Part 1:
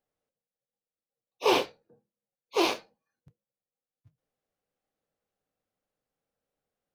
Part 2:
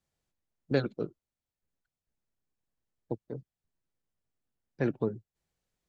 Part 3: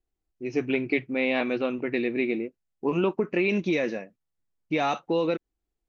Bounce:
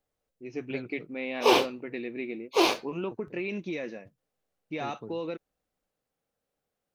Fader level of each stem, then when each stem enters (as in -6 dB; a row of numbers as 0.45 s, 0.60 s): +2.5 dB, -13.0 dB, -9.0 dB; 0.00 s, 0.00 s, 0.00 s